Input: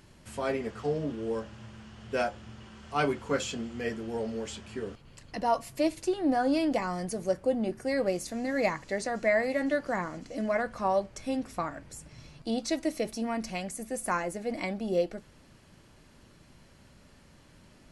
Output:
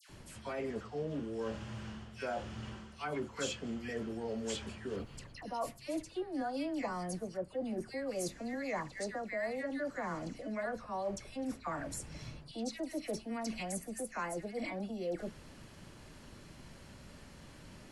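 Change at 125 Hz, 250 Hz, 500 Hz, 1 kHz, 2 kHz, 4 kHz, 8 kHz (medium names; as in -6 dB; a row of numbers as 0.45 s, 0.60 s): -4.5 dB, -7.5 dB, -9.0 dB, -9.0 dB, -8.5 dB, -5.5 dB, -3.5 dB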